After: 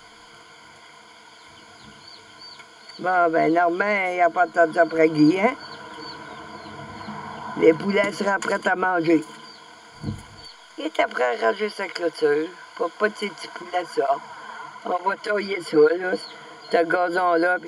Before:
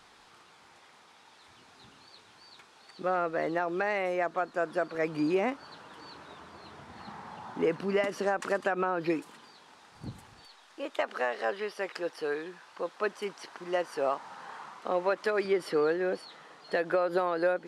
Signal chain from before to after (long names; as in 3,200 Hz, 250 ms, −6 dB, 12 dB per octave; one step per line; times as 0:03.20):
EQ curve with evenly spaced ripples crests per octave 1.8, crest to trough 15 dB
0:13.62–0:16.04: through-zero flanger with one copy inverted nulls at 1.1 Hz, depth 7.1 ms
level +8 dB